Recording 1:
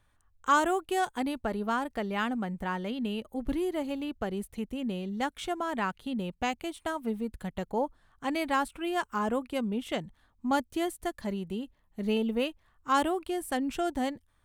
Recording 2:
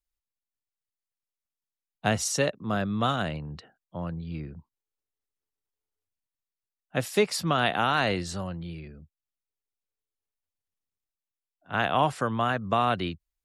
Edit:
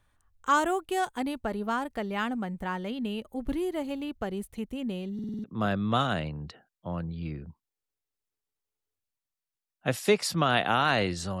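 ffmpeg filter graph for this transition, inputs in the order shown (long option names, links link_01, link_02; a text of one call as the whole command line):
ffmpeg -i cue0.wav -i cue1.wav -filter_complex "[0:a]apad=whole_dur=11.4,atrim=end=11.4,asplit=6[link_01][link_02][link_03][link_04][link_05][link_06];[link_01]atrim=end=5.192[link_07];[link_02]atrim=start=5.138:end=5.192[link_08];[link_03]atrim=start=5.138:end=5.192[link_09];[link_04]atrim=start=5.138:end=5.192[link_10];[link_05]atrim=start=5.138:end=5.192[link_11];[link_06]atrim=start=5.138:end=5.192[link_12];[1:a]atrim=start=2.528:end=8.49[link_13];[link_07][link_08]acrossfade=duration=0.004:curve1=hsin:curve2=hsin[link_14];[link_14][link_09]acrossfade=duration=0.004:curve1=hsin:curve2=hsin[link_15];[link_15][link_10]acrossfade=duration=0.004:curve1=hsin:curve2=hsin[link_16];[link_16][link_11]acrossfade=duration=0.004:curve1=hsin:curve2=hsin[link_17];[link_17][link_12]acrossfade=duration=0.004:curve1=hsin:curve2=hsin[link_18];[link_18][link_13]acrossfade=duration=0.004:curve1=hsin:curve2=hsin" out.wav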